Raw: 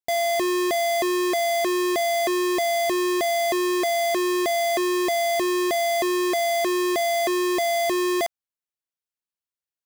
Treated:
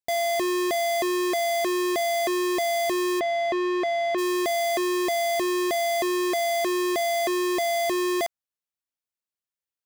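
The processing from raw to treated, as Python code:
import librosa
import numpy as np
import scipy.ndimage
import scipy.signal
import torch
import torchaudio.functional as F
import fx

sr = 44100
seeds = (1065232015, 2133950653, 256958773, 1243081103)

y = fx.lowpass(x, sr, hz=3000.0, slope=12, at=(3.19, 4.17), fade=0.02)
y = y * 10.0 ** (-2.0 / 20.0)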